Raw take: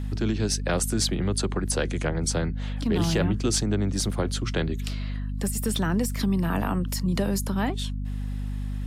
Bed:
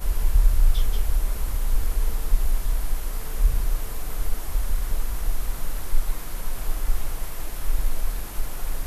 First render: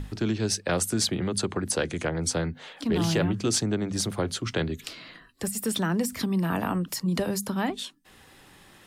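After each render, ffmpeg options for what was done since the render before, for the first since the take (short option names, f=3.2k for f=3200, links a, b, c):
-af "bandreject=f=50:t=h:w=6,bandreject=f=100:t=h:w=6,bandreject=f=150:t=h:w=6,bandreject=f=200:t=h:w=6,bandreject=f=250:t=h:w=6"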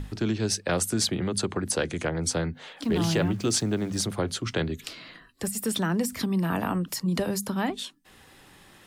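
-filter_complex "[0:a]asettb=1/sr,asplit=3[a][b][c];[a]atrim=end=2.834[d];[b]atrim=start=2.83:end=4.03,asetpts=PTS-STARTPTS,afade=t=in:d=0.004:c=qsin,afade=t=out:st=1.196:d=0.004:c=qsin,aeval=exprs='val(0)*gte(abs(val(0)),0.00562)':c=same[e];[c]atrim=start=4.026[f];[d][e]acrossfade=d=0.004:c1=hsin:c2=qsin[g];[g][f]acrossfade=d=0.004:c1=qsin:c2=hsin"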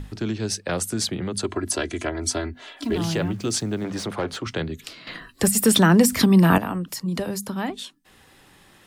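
-filter_complex "[0:a]asettb=1/sr,asplit=3[a][b][c];[a]atrim=end=1.444[d];[b]atrim=start=1.44:end=2.96,asetpts=PTS-STARTPTS,afade=t=in:d=0.004:c=qsin,afade=t=out:st=1.516:d=0.004:c=qsin,aecho=1:1:3:0.88,atrim=end_sample=67032[e];[c]atrim=start=2.956[f];[d][e]acrossfade=d=0.004:c1=hsin:c2=qsin[g];[g][f]acrossfade=d=0.004:c1=qsin:c2=hsin,asettb=1/sr,asplit=3[h][i][j];[h]atrim=end=3.844[k];[i]atrim=start=3.84:end=4.47,asetpts=PTS-STARTPTS,afade=t=in:d=0.004:c=qsin,afade=t=out:st=0.626:d=0.004:c=qsin,asplit=2[l][m];[m]highpass=f=720:p=1,volume=17dB,asoftclip=type=tanh:threshold=-16dB[n];[l][n]amix=inputs=2:normalize=0,lowpass=f=1.6k:p=1,volume=-6dB[o];[j]atrim=start=4.466[p];[k][o]acrossfade=d=0.004:c1=hsin:c2=qsin[q];[q][p]acrossfade=d=0.004:c1=qsin:c2=hsin,asplit=3[r][s][t];[r]atrim=end=5.072[u];[s]atrim=start=5.068:end=6.582,asetpts=PTS-STARTPTS,volume=11dB[v];[t]atrim=start=6.578[w];[u][v]acrossfade=d=0.004:c1=hsin:c2=hsin[x];[x][w]acrossfade=d=0.004:c1=hsin:c2=hsin"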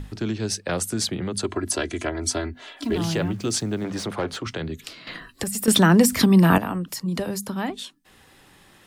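-filter_complex "[0:a]asettb=1/sr,asplit=3[a][b][c];[a]atrim=end=4.414[d];[b]atrim=start=4.41:end=5.68,asetpts=PTS-STARTPTS,afade=t=in:d=0.004:c=qsin,afade=t=out:st=1.266:d=0.004:c=qsin,acompressor=threshold=-24dB:ratio=6:attack=3.2:release=140:knee=1:detection=peak[e];[c]atrim=start=5.676[f];[d][e]acrossfade=d=0.004:c1=hsin:c2=qsin[g];[g][f]acrossfade=d=0.004:c1=qsin:c2=hsin"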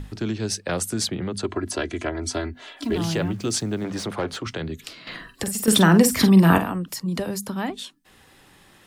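-filter_complex "[0:a]asettb=1/sr,asplit=3[a][b][c];[a]atrim=end=1.084[d];[b]atrim=start=1.08:end=2.34,asetpts=PTS-STARTPTS,afade=t=in:d=0.004:c=qsin,afade=t=out:st=1.256:d=0.004:c=qsin,highshelf=f=7k:g=-11[e];[c]atrim=start=2.336[f];[d][e]acrossfade=d=0.004:c1=hsin:c2=qsin[g];[g][f]acrossfade=d=0.004:c1=qsin:c2=hsin,asettb=1/sr,asplit=3[h][i][j];[h]atrim=end=5.014[k];[i]atrim=start=5.01:end=6.7,asetpts=PTS-STARTPTS,afade=t=in:d=0.004:c=qsin,afade=t=out:st=1.686:d=0.004:c=qsin,asplit=2[l][m];[m]adelay=47,volume=-9dB[n];[l][n]amix=inputs=2:normalize=0,atrim=end_sample=74529[o];[j]atrim=start=6.696[p];[k][o]acrossfade=d=0.004:c1=hsin:c2=qsin[q];[q][p]acrossfade=d=0.004:c1=qsin:c2=hsin"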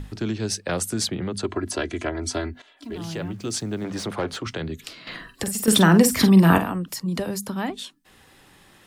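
-filter_complex "[0:a]asplit=2[a][b];[a]atrim=end=2.62,asetpts=PTS-STARTPTS,afade=t=out:st=2.616:d=0.004:c=hsin:silence=0.16788[c];[b]atrim=start=2.62,asetpts=PTS-STARTPTS,afade=t=in:d=1.48:silence=0.16788[d];[c][d]concat=n=2:v=0:a=1"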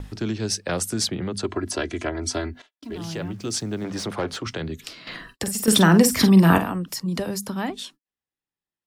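-af "agate=range=-43dB:threshold=-46dB:ratio=16:detection=peak,equalizer=f=5.4k:t=o:w=0.34:g=3.5"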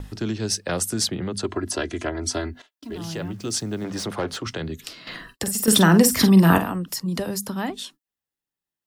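-af "highshelf=f=11k:g=6.5,bandreject=f=2.3k:w=20"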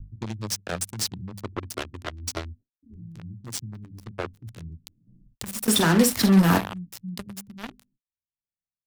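-filter_complex "[0:a]flanger=delay=7.7:depth=3:regen=-42:speed=0.52:shape=triangular,acrossover=split=190[a][b];[b]acrusher=bits=3:mix=0:aa=0.5[c];[a][c]amix=inputs=2:normalize=0"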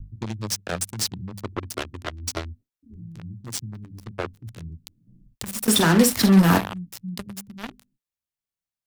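-af "volume=2dB"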